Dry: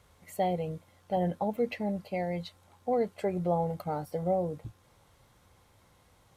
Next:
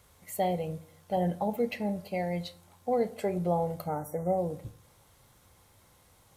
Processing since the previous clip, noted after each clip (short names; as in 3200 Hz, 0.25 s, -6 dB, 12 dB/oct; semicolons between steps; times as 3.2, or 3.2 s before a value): spectral gain 3.87–4.37, 2200–5600 Hz -25 dB; high shelf 7000 Hz +10.5 dB; reverb RT60 0.55 s, pre-delay 21 ms, DRR 13 dB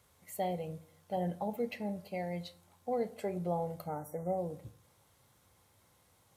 HPF 69 Hz; gain -6 dB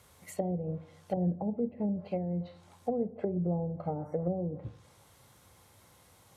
treble ducked by the level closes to 330 Hz, closed at -33.5 dBFS; gain +7.5 dB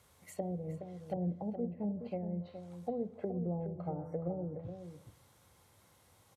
outdoor echo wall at 72 m, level -9 dB; gain -5.5 dB